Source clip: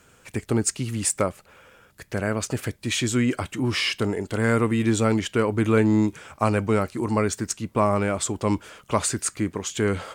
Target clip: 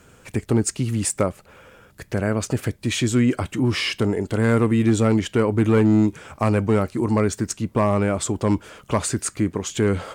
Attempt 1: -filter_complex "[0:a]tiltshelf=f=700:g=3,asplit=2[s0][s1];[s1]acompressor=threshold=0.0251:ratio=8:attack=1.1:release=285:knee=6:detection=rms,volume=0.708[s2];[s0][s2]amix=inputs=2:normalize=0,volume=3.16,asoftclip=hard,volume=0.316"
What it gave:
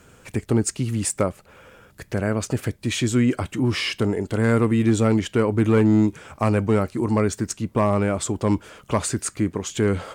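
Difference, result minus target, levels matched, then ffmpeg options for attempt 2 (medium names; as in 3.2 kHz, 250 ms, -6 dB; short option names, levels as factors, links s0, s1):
compression: peak gain reduction +6 dB
-filter_complex "[0:a]tiltshelf=f=700:g=3,asplit=2[s0][s1];[s1]acompressor=threshold=0.0562:ratio=8:attack=1.1:release=285:knee=6:detection=rms,volume=0.708[s2];[s0][s2]amix=inputs=2:normalize=0,volume=3.16,asoftclip=hard,volume=0.316"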